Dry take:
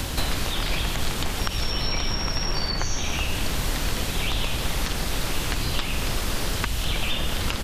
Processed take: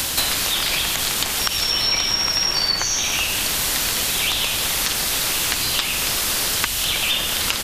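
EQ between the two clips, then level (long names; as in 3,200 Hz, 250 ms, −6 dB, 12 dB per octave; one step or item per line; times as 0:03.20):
spectral tilt +3 dB per octave
+3.5 dB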